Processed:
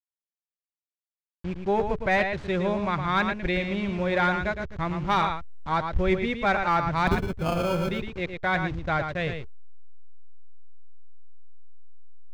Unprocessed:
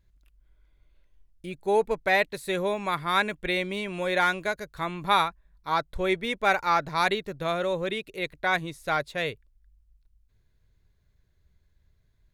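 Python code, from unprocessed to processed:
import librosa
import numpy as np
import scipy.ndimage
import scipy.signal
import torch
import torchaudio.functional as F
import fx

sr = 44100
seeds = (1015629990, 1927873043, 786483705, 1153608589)

y = fx.delta_hold(x, sr, step_db=-37.0)
y = scipy.signal.sosfilt(scipy.signal.butter(4, 6900.0, 'lowpass', fs=sr, output='sos'), y)
y = fx.peak_eq(y, sr, hz=68.0, db=8.5, octaves=0.77)
y = fx.sample_hold(y, sr, seeds[0], rate_hz=1900.0, jitter_pct=0, at=(7.07, 7.91))
y = y + 10.0 ** (-7.0 / 20.0) * np.pad(y, (int(112 * sr / 1000.0), 0))[:len(y)]
y = np.clip(10.0 ** (15.5 / 20.0) * y, -1.0, 1.0) / 10.0 ** (15.5 / 20.0)
y = fx.bass_treble(y, sr, bass_db=9, treble_db=-11)
y = fx.notch(y, sr, hz=430.0, q=12.0)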